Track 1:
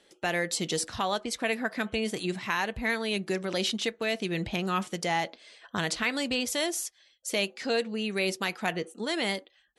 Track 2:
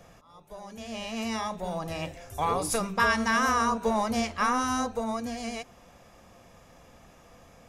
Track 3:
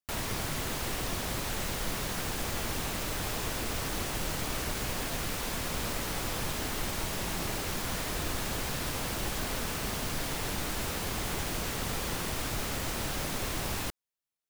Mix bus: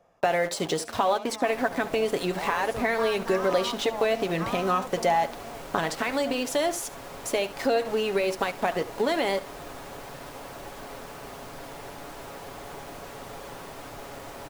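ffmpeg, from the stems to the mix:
-filter_complex "[0:a]alimiter=limit=-21.5dB:level=0:latency=1:release=270,aeval=exprs='val(0)*gte(abs(val(0)),0.0106)':c=same,volume=2.5dB,asplit=2[a][b];[b]volume=-20dB[c];[1:a]volume=-18.5dB[d];[2:a]adelay=1400,volume=-13.5dB[e];[a][e]amix=inputs=2:normalize=0,aecho=1:1:7.2:0.4,acompressor=threshold=-31dB:ratio=3,volume=0dB[f];[c]aecho=0:1:71:1[g];[d][f][g]amix=inputs=3:normalize=0,equalizer=f=660:t=o:w=2.6:g=12.5,bandreject=f=70.48:t=h:w=4,bandreject=f=140.96:t=h:w=4,bandreject=f=211.44:t=h:w=4,bandreject=f=281.92:t=h:w=4"

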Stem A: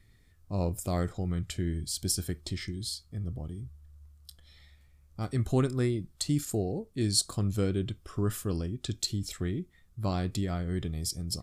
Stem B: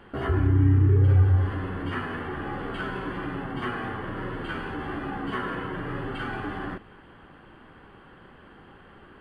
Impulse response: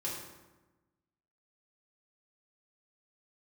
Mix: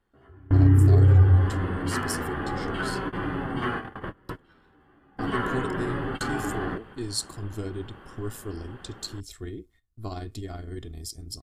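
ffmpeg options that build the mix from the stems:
-filter_complex "[0:a]agate=range=-14dB:threshold=-53dB:ratio=16:detection=peak,tremolo=f=110:d=0.667,aecho=1:1:2.8:0.65,volume=-2.5dB,asplit=2[a][b];[1:a]volume=2.5dB[c];[b]apad=whole_len=405814[d];[c][d]sidechaingate=range=-29dB:threshold=-54dB:ratio=16:detection=peak[e];[a][e]amix=inputs=2:normalize=0,equalizer=f=2.4k:t=o:w=0.41:g=-3.5"

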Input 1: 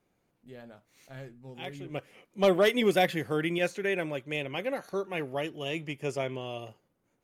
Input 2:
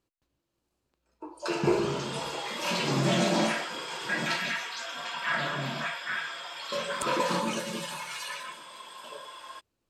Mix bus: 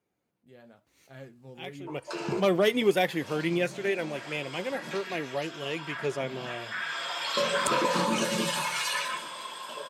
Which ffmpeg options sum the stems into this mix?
-filter_complex "[0:a]flanger=delay=2.1:depth=3.8:regen=64:speed=1:shape=sinusoidal,volume=-2dB,asplit=2[a][b];[1:a]acompressor=threshold=-30dB:ratio=6,adelay=650,volume=1.5dB[c];[b]apad=whole_len=464898[d];[c][d]sidechaincompress=threshold=-50dB:ratio=10:attack=48:release=726[e];[a][e]amix=inputs=2:normalize=0,highpass=71,dynaudnorm=f=120:g=17:m=6dB"

